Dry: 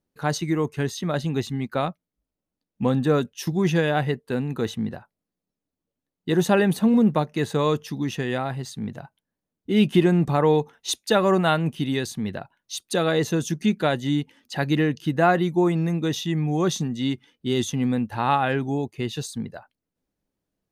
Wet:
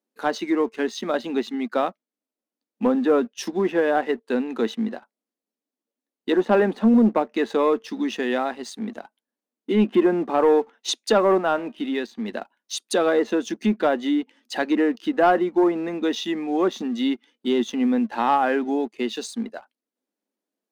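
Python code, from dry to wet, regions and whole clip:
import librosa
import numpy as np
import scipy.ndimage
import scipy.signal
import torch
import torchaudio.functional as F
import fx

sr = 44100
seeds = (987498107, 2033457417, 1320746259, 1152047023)

y = fx.chain(x, sr, fx.lowpass(hz=3400.0, slope=12),
    fx.comb_fb(f0_hz=310.0, decay_s=0.36, harmonics='all', damping=0.0, mix_pct=30), at=(11.38, 12.28))
y = fx.env_lowpass_down(y, sr, base_hz=1700.0, full_db=-17.0)
y = scipy.signal.sosfilt(scipy.signal.ellip(4, 1.0, 40, 220.0, 'highpass', fs=sr, output='sos'), y)
y = fx.leveller(y, sr, passes=1)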